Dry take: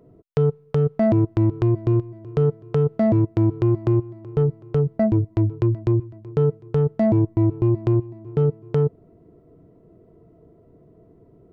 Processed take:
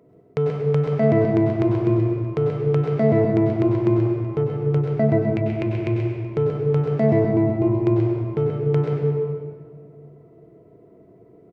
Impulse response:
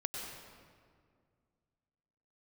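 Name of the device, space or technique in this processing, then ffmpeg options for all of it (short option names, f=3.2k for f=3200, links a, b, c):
PA in a hall: -filter_complex "[0:a]asettb=1/sr,asplit=3[a][b][c];[a]atrim=end=5.224[d];[b]atrim=start=5.22:end=5.96,asetpts=PTS-STARTPTS,afade=t=in:d=0.004:c=qsin,afade=t=out:st=0.736:d=0.004:c=qsin,equalizer=f=250:t=o:w=0.67:g=-12,equalizer=f=1k:t=o:w=0.67:g=-5,equalizer=f=2.5k:t=o:w=0.67:g=11[e];[c]atrim=start=5.956[f];[d][e]acrossfade=d=0.004:c1=hsin:c2=qsin[g];[g][f]acrossfade=d=0.004:c1=qsin:c2=hsin,highpass=f=190:p=1,equalizer=f=2.2k:t=o:w=0.27:g=7.5,aecho=1:1:131:0.355[h];[1:a]atrim=start_sample=2205[i];[h][i]afir=irnorm=-1:irlink=0,volume=1dB"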